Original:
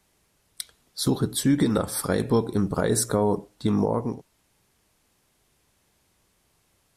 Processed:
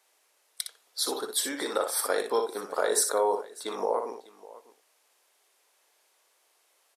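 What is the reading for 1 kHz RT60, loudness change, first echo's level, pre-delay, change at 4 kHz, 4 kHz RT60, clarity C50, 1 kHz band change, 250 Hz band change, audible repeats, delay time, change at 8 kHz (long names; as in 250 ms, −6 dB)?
no reverb audible, −4.5 dB, −7.0 dB, no reverb audible, +1.0 dB, no reverb audible, no reverb audible, +1.0 dB, −17.0 dB, 2, 60 ms, +1.0 dB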